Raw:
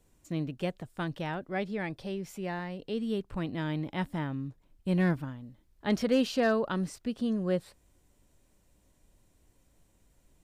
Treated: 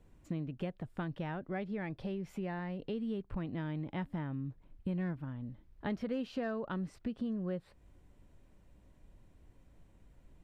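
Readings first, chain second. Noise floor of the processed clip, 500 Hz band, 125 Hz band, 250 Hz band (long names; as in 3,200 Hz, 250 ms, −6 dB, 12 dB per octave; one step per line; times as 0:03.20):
−64 dBFS, −9.0 dB, −5.0 dB, −6.0 dB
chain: bass and treble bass +4 dB, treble −14 dB
downward compressor 4 to 1, threshold −38 dBFS, peak gain reduction 15 dB
level +2 dB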